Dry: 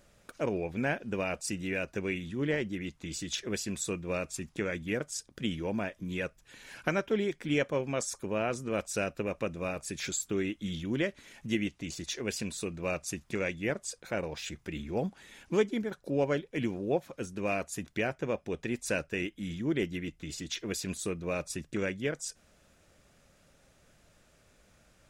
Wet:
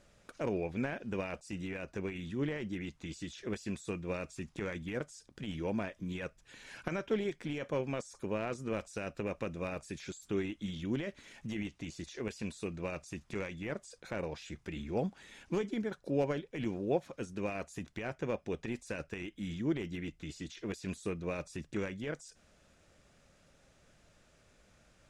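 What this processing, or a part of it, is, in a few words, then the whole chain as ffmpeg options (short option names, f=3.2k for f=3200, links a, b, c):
de-esser from a sidechain: -filter_complex "[0:a]lowpass=8.9k,asplit=2[a][b];[b]highpass=4k,apad=whole_len=1106821[c];[a][c]sidechaincompress=threshold=-49dB:ratio=5:attack=0.67:release=22,asettb=1/sr,asplit=3[d][e][f];[d]atrim=end=1.404[g];[e]atrim=start=1.4:end=2.14,asetpts=PTS-STARTPTS,afade=t=in:d=0.004:c=qsin,afade=t=out:st=0.736:d=0.004:c=qsin,adynamicequalizer=threshold=0.00178:dfrequency=1600:dqfactor=0.7:tfrequency=1600:tqfactor=0.7:attack=5:release=100:ratio=0.375:range=2:mode=cutabove:tftype=highshelf[h];[f]atrim=start=2.136[i];[g][h]acrossfade=d=0.004:c1=hsin:c2=qsin[j];[j][i]acrossfade=d=0.004:c1=qsin:c2=hsin,volume=-1.5dB"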